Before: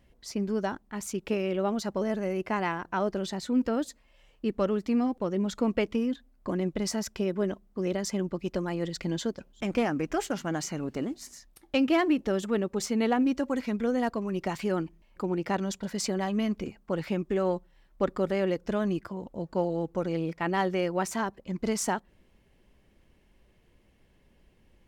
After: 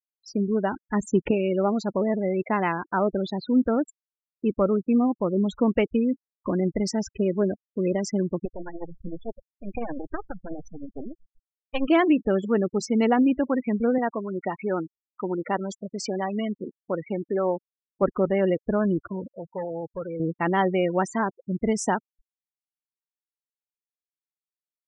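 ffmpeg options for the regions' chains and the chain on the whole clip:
ffmpeg -i in.wav -filter_complex "[0:a]asettb=1/sr,asplit=3[link_01][link_02][link_03];[link_01]atrim=end=0.804[link_04];[link_02]atrim=start=0.8:end=1.31,asetpts=PTS-STARTPTS,afade=type=in:duration=0.004:curve=qsin,afade=type=out:start_time=0.506:duration=0.004:curve=qsin,highshelf=frequency=3400:gain=-8.5,acontrast=76[link_05];[link_03]atrim=start=1.306[link_06];[link_04][link_05]acrossfade=duration=0.004:curve1=hsin:curve2=qsin[link_07];[link_07][link_06]acrossfade=duration=0.004:curve1=qsin:curve2=hsin,asettb=1/sr,asplit=3[link_08][link_09][link_10];[link_08]atrim=end=8.454[link_11];[link_09]atrim=start=8.45:end=11.88,asetpts=PTS-STARTPTS,afade=type=in:duration=0.004:curve=qsin,afade=type=out:start_time=3.426:duration=0.004:curve=qsin,aeval=exprs='max(val(0),0)':channel_layout=same,tremolo=f=13:d=0.52[link_12];[link_10]atrim=start=11.876[link_13];[link_11][link_12]acrossfade=duration=0.004:curve1=hsin:curve2=qsin[link_14];[link_14][link_13]acrossfade=duration=0.004:curve1=qsin:curve2=hsin,asettb=1/sr,asplit=3[link_15][link_16][link_17];[link_15]atrim=end=13.984[link_18];[link_16]atrim=start=13.98:end=18.02,asetpts=PTS-STARTPTS,afade=type=in:duration=0.004:curve=qsin,afade=type=out:start_time=4.036:duration=0.004:curve=qsin,highpass=frequency=360:poles=1,highshelf=frequency=2600:gain=-2[link_19];[link_17]atrim=start=18.016[link_20];[link_18][link_19]acrossfade=duration=0.004:curve1=hsin:curve2=qsin[link_21];[link_21][link_20]acrossfade=duration=0.004:curve1=qsin:curve2=hsin,asettb=1/sr,asplit=3[link_22][link_23][link_24];[link_22]atrim=end=19.284[link_25];[link_23]atrim=start=19.28:end=20.2,asetpts=PTS-STARTPTS,afade=type=in:duration=0.004:curve=qsin,afade=type=out:start_time=0.916:duration=0.004:curve=qsin,equalizer=frequency=230:width_type=o:width=1.4:gain=-14.5,asoftclip=type=hard:threshold=-32dB[link_26];[link_24]atrim=start=20.196[link_27];[link_25][link_26]acrossfade=duration=0.004:curve1=hsin:curve2=qsin[link_28];[link_28][link_27]acrossfade=duration=0.004:curve1=qsin:curve2=hsin,afftfilt=real='re*gte(hypot(re,im),0.0282)':imag='im*gte(hypot(re,im),0.0282)':win_size=1024:overlap=0.75,highshelf=frequency=5000:gain=-6.5,acontrast=32" out.wav

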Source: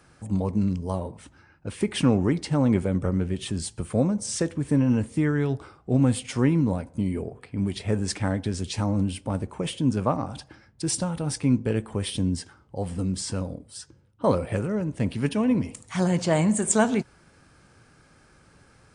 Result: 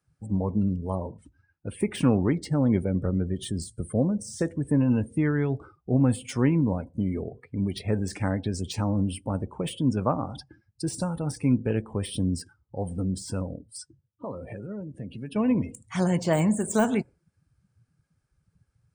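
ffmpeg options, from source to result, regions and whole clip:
ffmpeg -i in.wav -filter_complex "[0:a]asettb=1/sr,asplit=3[link_01][link_02][link_03];[link_01]atrim=end=2.354[link_04];[link_02]atrim=start=2.35:end=4.42,asetpts=PTS-STARTPTS,afade=type=in:duration=0.004:curve=qsin,afade=type=out:start_time=2.066:duration=0.004:curve=qsin,equalizer=frequency=990:width_type=o:width=1.1:gain=-5,bandreject=frequency=2600:width=6.4[link_05];[link_03]atrim=start=4.416[link_06];[link_04][link_05]acrossfade=duration=0.004:curve1=hsin:curve2=qsin[link_07];[link_07][link_06]acrossfade=duration=0.004:curve1=qsin:curve2=hsin,asettb=1/sr,asplit=3[link_08][link_09][link_10];[link_08]atrim=end=13.704[link_11];[link_09]atrim=start=13.7:end=15.36,asetpts=PTS-STARTPTS,afade=type=in:duration=0.004:curve=qsin,afade=type=out:start_time=1.656:duration=0.004:curve=qsin,acompressor=threshold=-35dB:ratio=3:attack=3.2:release=140:knee=1:detection=peak,highpass=frequency=61:width=0.5412,highpass=frequency=61:width=1.3066,asplit=2[link_12][link_13];[link_13]adelay=15,volume=-13dB[link_14];[link_12][link_14]amix=inputs=2:normalize=0,atrim=end_sample=73206[link_15];[link_10]atrim=start=15.356[link_16];[link_11][link_15]acrossfade=duration=0.004:curve1=hsin:curve2=qsin[link_17];[link_17][link_16]acrossfade=duration=0.004:curve1=qsin:curve2=hsin,afftdn=noise_reduction=25:noise_floor=-42,deesser=0.8,highshelf=frequency=8100:gain=10.5,volume=-1dB" out.wav

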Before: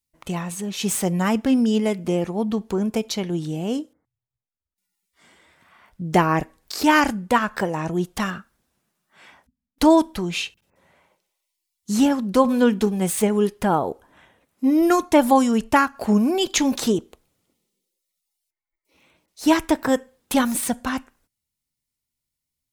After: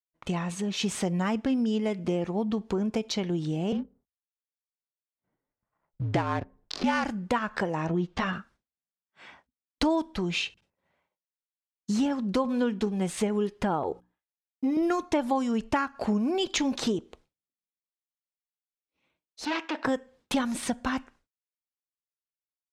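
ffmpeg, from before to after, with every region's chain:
ffmpeg -i in.wav -filter_complex "[0:a]asettb=1/sr,asplit=3[link_01][link_02][link_03];[link_01]atrim=end=3.724[link_04];[link_02]atrim=start=3.72:end=7.05,asetpts=PTS-STARTPTS,afade=type=in:duration=0.004:curve=qsin,afade=type=out:start_time=3.326:duration=0.004:curve=qsin,acrusher=bits=6:mode=log:mix=0:aa=0.000001,adynamicsmooth=sensitivity=4:basefreq=800,afreqshift=-51[link_05];[link_03]atrim=start=7.046[link_06];[link_04][link_05]acrossfade=duration=0.004:curve1=hsin:curve2=qsin[link_07];[link_07][link_06]acrossfade=duration=0.004:curve1=qsin:curve2=hsin,asettb=1/sr,asplit=3[link_08][link_09][link_10];[link_08]atrim=end=7.874[link_11];[link_09]atrim=start=7.87:end=8.33,asetpts=PTS-STARTPTS,afade=type=in:duration=0.004:curve=qsin,afade=type=out:start_time=0.456:duration=0.004:curve=qsin,lowpass=4300,asplit=2[link_12][link_13];[link_13]adelay=12,volume=-4dB[link_14];[link_12][link_14]amix=inputs=2:normalize=0,atrim=end_sample=20286[link_15];[link_10]atrim=start=8.326[link_16];[link_11][link_15]acrossfade=duration=0.004:curve1=hsin:curve2=qsin[link_17];[link_17][link_16]acrossfade=duration=0.004:curve1=qsin:curve2=hsin,asettb=1/sr,asplit=3[link_18][link_19][link_20];[link_18]atrim=end=13.834[link_21];[link_19]atrim=start=13.83:end=14.77,asetpts=PTS-STARTPTS,afade=type=in:duration=0.004:curve=qsin,afade=type=out:start_time=0.936:duration=0.004:curve=qsin,agate=range=-23dB:threshold=-49dB:ratio=16:release=100:detection=peak,bandreject=frequency=60:width_type=h:width=6,bandreject=frequency=120:width_type=h:width=6,bandreject=frequency=180:width_type=h:width=6,bandreject=frequency=240:width_type=h:width=6,bandreject=frequency=300:width_type=h:width=6,aecho=1:1:2.4:0.46,atrim=end_sample=41454[link_22];[link_20]atrim=start=14.766[link_23];[link_21][link_22]acrossfade=duration=0.004:curve1=hsin:curve2=qsin[link_24];[link_24][link_23]acrossfade=duration=0.004:curve1=qsin:curve2=hsin,asettb=1/sr,asplit=3[link_25][link_26][link_27];[link_25]atrim=end=19.454[link_28];[link_26]atrim=start=19.45:end=19.85,asetpts=PTS-STARTPTS,afade=type=in:duration=0.004:curve=qsin,afade=type=out:start_time=0.396:duration=0.004:curve=qsin,volume=23dB,asoftclip=hard,volume=-23dB,highpass=frequency=310:width=0.5412,highpass=frequency=310:width=1.3066,equalizer=frequency=400:width_type=q:width=4:gain=-9,equalizer=frequency=2700:width_type=q:width=4:gain=6,equalizer=frequency=5600:width_type=q:width=4:gain=-3,lowpass=frequency=5800:width=0.5412,lowpass=frequency=5800:width=1.3066[link_29];[link_27]atrim=start=19.846[link_30];[link_28][link_29]acrossfade=duration=0.004:curve1=hsin:curve2=qsin[link_31];[link_31][link_30]acrossfade=duration=0.004:curve1=qsin:curve2=hsin,agate=range=-33dB:threshold=-48dB:ratio=3:detection=peak,lowpass=5600,acompressor=threshold=-26dB:ratio=3" out.wav

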